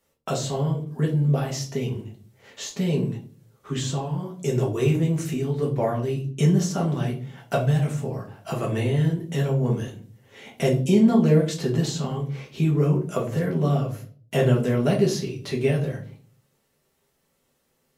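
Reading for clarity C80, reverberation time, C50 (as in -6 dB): 15.0 dB, 0.45 s, 9.5 dB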